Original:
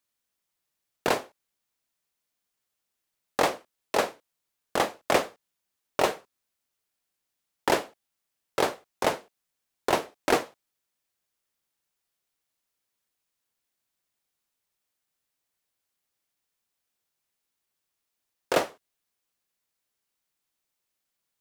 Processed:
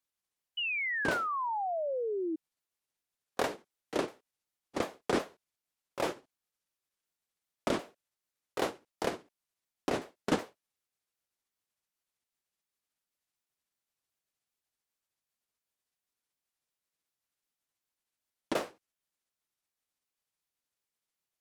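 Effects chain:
pitch shifter swept by a sawtooth −8.5 semitones, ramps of 371 ms
sound drawn into the spectrogram fall, 0:00.57–0:02.36, 310–3,000 Hz −27 dBFS
level −6 dB

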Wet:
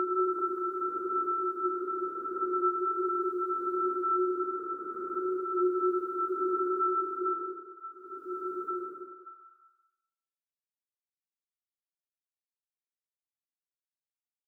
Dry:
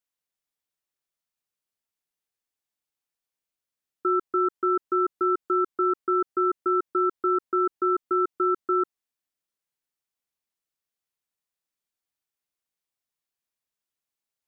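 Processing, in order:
delay that plays each chunk backwards 199 ms, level −11 dB
brickwall limiter −23 dBFS, peak gain reduction 9 dB
centre clipping without the shift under −59.5 dBFS
extreme stretch with random phases 4.7×, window 0.25 s, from 0:07.30
on a send: echo through a band-pass that steps 194 ms, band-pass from 490 Hz, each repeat 0.7 octaves, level −6 dB

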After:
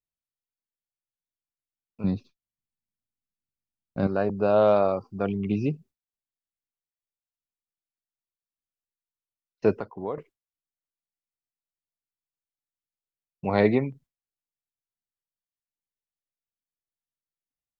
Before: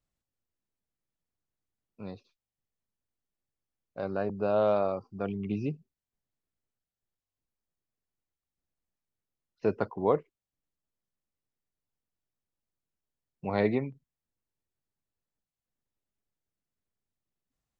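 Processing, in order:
noise gate with hold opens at −56 dBFS
0:02.04–0:04.07: low shelf with overshoot 350 Hz +10 dB, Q 1.5
0:09.72–0:10.18: downward compressor 2 to 1, threshold −45 dBFS, peak gain reduction 14 dB
level +6 dB

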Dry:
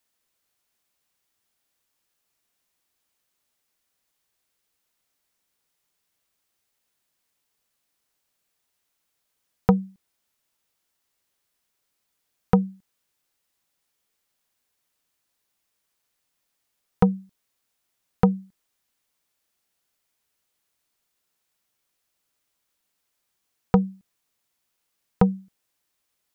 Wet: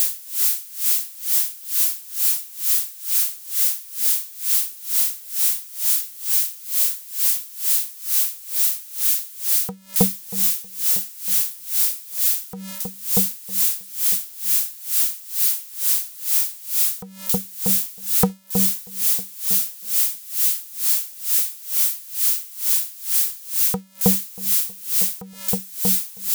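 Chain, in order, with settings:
spike at every zero crossing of −17 dBFS
low-shelf EQ 71 Hz −6.5 dB
on a send: delay with a low-pass on its return 318 ms, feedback 51%, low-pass 770 Hz, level −3.5 dB
on the sum: tremolo with a sine in dB 2.2 Hz, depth 24 dB
level +4 dB

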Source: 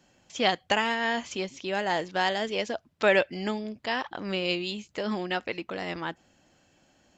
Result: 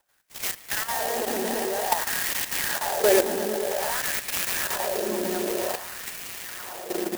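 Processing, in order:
rotating-speaker cabinet horn 5 Hz
echo that builds up and dies away 113 ms, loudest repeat 8, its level −9 dB
auto-filter high-pass sine 0.52 Hz 280–2,400 Hz
output level in coarse steps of 10 dB
converter with an unsteady clock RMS 0.095 ms
level +3 dB

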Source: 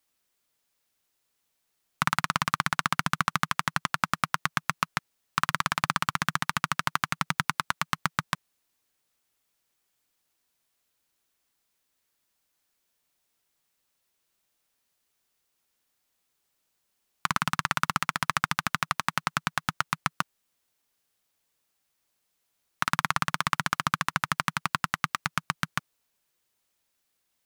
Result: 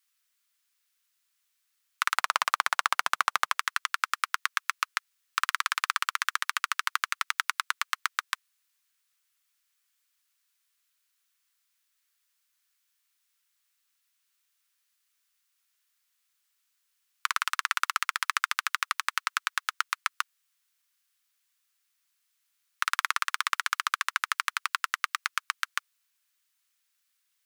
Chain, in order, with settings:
high-pass filter 1,200 Hz 24 dB per octave, from 0:02.16 460 Hz, from 0:03.59 1,200 Hz
level +1 dB

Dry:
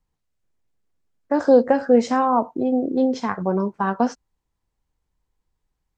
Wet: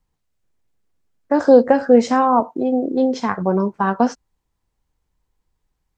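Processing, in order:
0:02.40–0:03.19: high-pass filter 210 Hz 6 dB per octave
level +3.5 dB

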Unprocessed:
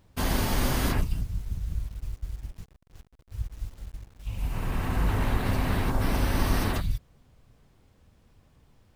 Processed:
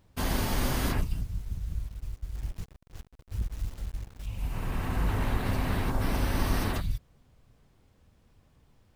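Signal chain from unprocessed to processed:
0:02.35–0:04.26: leveller curve on the samples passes 2
level −2.5 dB

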